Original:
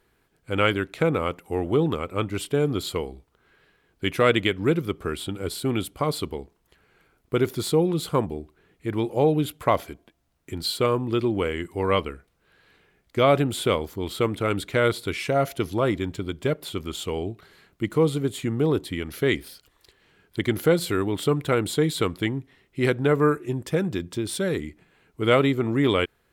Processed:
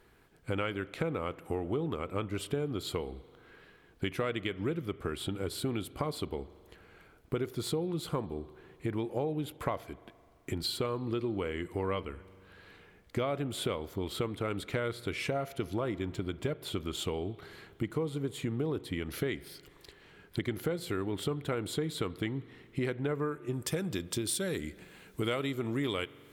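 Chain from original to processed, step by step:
high-shelf EQ 3,600 Hz −4 dB, from 0:23.53 +10 dB
downward compressor 5 to 1, threshold −36 dBFS, peak gain reduction 20.5 dB
spring reverb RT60 2.5 s, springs 42 ms, chirp 40 ms, DRR 18.5 dB
level +4 dB

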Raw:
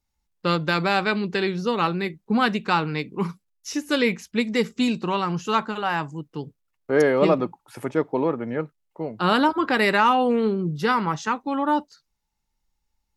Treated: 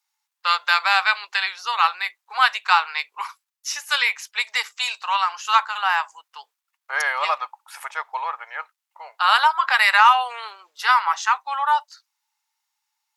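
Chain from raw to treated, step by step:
Butterworth high-pass 850 Hz 36 dB per octave
level +6.5 dB

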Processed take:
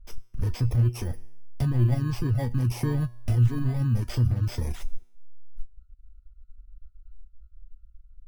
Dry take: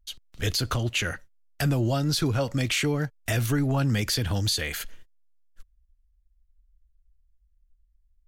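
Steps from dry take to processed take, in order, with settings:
samples in bit-reversed order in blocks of 32 samples
RIAA equalisation playback
in parallel at +2.5 dB: downward compressor, threshold −25 dBFS, peak gain reduction 14.5 dB
on the sum: brickwall limiter −9.5 dBFS, peak gain reduction 7.5 dB
tuned comb filter 120 Hz, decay 0.89 s, harmonics all, mix 80%
reverb reduction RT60 0.58 s
level +4 dB

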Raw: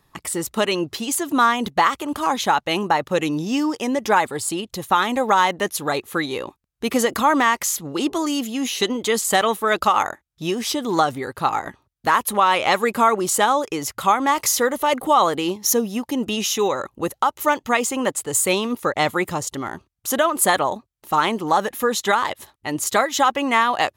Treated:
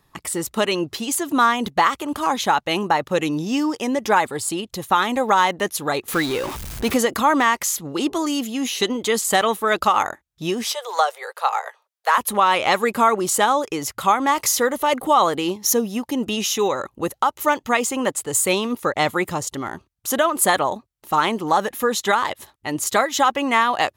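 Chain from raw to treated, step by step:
0:06.08–0:06.96: converter with a step at zero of −25 dBFS
0:10.70–0:12.18: Butterworth high-pass 460 Hz 72 dB per octave

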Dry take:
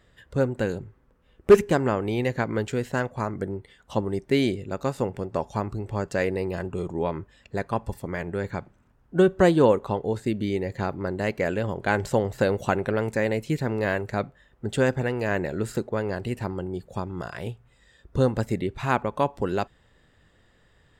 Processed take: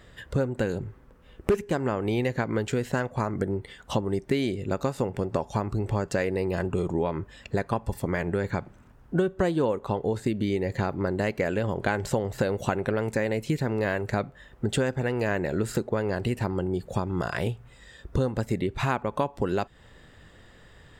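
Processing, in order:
downward compressor 5 to 1, threshold −32 dBFS, peak gain reduction 20.5 dB
level +8.5 dB

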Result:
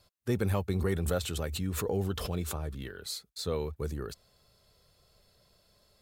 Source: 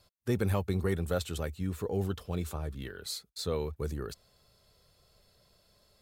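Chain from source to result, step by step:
0:00.76–0:02.83: background raised ahead of every attack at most 33 dB per second

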